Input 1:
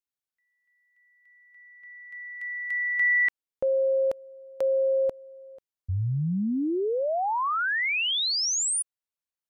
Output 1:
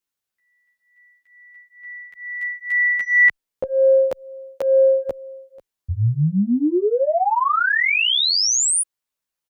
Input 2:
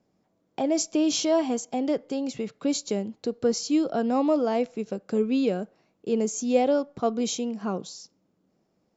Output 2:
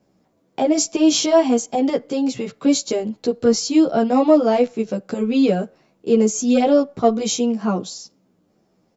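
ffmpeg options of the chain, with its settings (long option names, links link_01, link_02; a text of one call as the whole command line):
ffmpeg -i in.wav -filter_complex "[0:a]acontrast=47,asplit=2[link_01][link_02];[link_02]adelay=11.7,afreqshift=-2.2[link_03];[link_01][link_03]amix=inputs=2:normalize=1,volume=5dB" out.wav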